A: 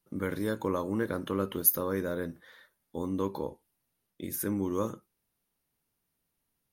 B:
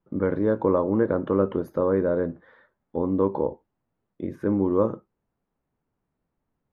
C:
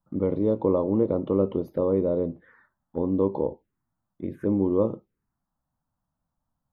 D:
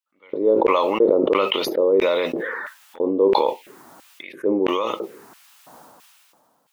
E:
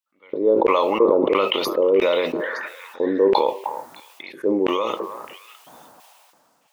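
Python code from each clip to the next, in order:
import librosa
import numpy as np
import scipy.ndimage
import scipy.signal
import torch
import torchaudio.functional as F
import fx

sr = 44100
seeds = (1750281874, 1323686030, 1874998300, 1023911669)

y1 = scipy.signal.sosfilt(scipy.signal.butter(2, 1200.0, 'lowpass', fs=sr, output='sos'), x)
y1 = fx.dynamic_eq(y1, sr, hz=570.0, q=0.95, threshold_db=-45.0, ratio=4.0, max_db=5)
y1 = y1 * 10.0 ** (6.5 / 20.0)
y2 = fx.env_phaser(y1, sr, low_hz=400.0, high_hz=1600.0, full_db=-25.0)
y3 = fx.filter_lfo_highpass(y2, sr, shape='square', hz=1.5, low_hz=420.0, high_hz=2500.0, q=2.5)
y3 = fx.sustainer(y3, sr, db_per_s=24.0)
y4 = fx.echo_stepped(y3, sr, ms=306, hz=860.0, octaves=1.4, feedback_pct=70, wet_db=-7)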